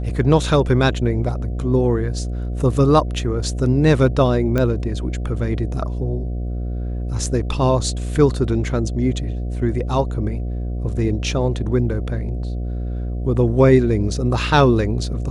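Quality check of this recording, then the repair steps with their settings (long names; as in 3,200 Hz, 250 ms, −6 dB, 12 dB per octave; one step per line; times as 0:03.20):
mains buzz 60 Hz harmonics 12 −24 dBFS
0:04.58: click −9 dBFS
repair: click removal
hum removal 60 Hz, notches 12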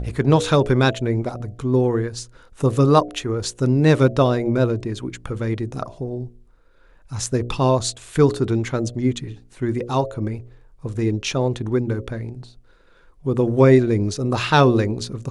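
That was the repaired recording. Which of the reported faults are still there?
none of them is left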